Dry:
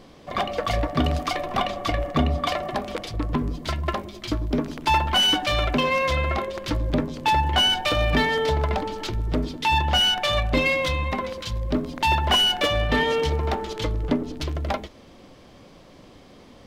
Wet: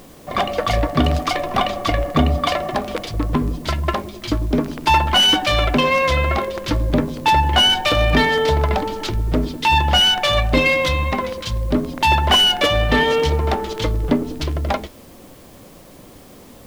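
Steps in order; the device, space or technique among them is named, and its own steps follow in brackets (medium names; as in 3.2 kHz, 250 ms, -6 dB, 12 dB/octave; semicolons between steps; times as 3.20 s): plain cassette with noise reduction switched in (tape noise reduction on one side only decoder only; wow and flutter 14 cents; white noise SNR 32 dB); trim +5.5 dB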